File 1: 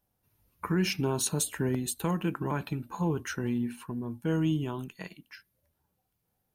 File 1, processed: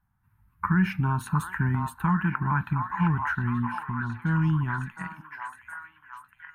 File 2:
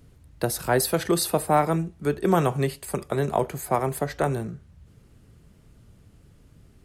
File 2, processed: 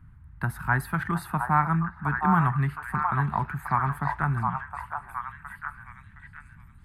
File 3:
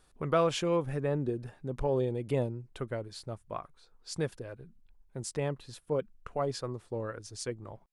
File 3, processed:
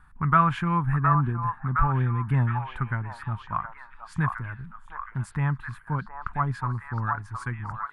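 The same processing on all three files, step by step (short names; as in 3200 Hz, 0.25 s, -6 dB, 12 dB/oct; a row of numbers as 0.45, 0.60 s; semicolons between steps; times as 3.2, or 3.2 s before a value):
EQ curve 120 Hz 0 dB, 200 Hz -3 dB, 530 Hz -30 dB, 910 Hz -1 dB, 1600 Hz +2 dB, 2900 Hz -16 dB, 5700 Hz -28 dB, 9600 Hz -19 dB; on a send: delay with a stepping band-pass 0.715 s, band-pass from 920 Hz, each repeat 0.7 oct, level -2 dB; on the sum: dynamic EQ 8000 Hz, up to -3 dB, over -57 dBFS, Q 1.1; match loudness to -27 LUFS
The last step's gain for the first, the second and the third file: +8.5, +3.5, +12.5 dB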